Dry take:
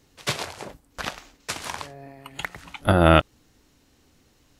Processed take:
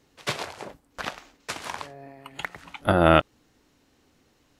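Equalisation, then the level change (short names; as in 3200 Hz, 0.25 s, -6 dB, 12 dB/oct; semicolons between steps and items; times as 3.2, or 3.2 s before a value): low shelf 130 Hz -9 dB; high shelf 3700 Hz -6.5 dB; 0.0 dB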